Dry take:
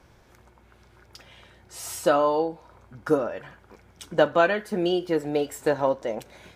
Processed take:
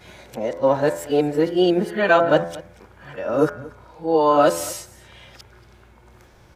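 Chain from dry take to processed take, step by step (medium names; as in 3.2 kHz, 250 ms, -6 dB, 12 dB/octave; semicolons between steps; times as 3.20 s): reverse the whole clip; de-hum 84.5 Hz, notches 29; harmonic-percussive split percussive -6 dB; delay 232 ms -20.5 dB; trim +7.5 dB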